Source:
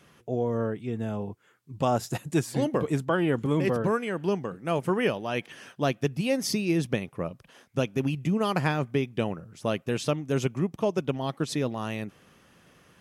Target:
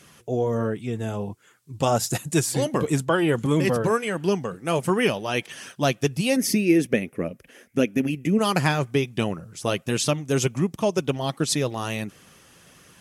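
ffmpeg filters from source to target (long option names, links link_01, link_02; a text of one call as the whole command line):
ffmpeg -i in.wav -filter_complex "[0:a]asettb=1/sr,asplit=3[link_01][link_02][link_03];[link_01]atrim=end=6.364[link_04];[link_02]atrim=start=6.36:end=8.39,asetpts=PTS-STARTPTS,afade=type=in:duration=0.004:curve=qsin,afade=type=out:start_time=2.026:duration=0.004:curve=qsin,equalizer=frequency=125:width_type=o:width=1:gain=-9,equalizer=frequency=250:width_type=o:width=1:gain=7,equalizer=frequency=500:width_type=o:width=1:gain=4,equalizer=frequency=1000:width_type=o:width=1:gain=-11,equalizer=frequency=2000:width_type=o:width=1:gain=7,equalizer=frequency=4000:width_type=o:width=1:gain=-10,equalizer=frequency=8000:width_type=o:width=1:gain=-6[link_05];[link_03]atrim=start=8.386[link_06];[link_04][link_05]acrossfade=duration=0.004:curve1=hsin:curve2=qsin[link_07];[link_07][link_06]acrossfade=duration=0.004:curve1=qsin:curve2=hsin,flanger=delay=0.4:depth=2.3:regen=-61:speed=1.4:shape=triangular,equalizer=frequency=8800:width_type=o:width=2.1:gain=10.5,volume=7.5dB" out.wav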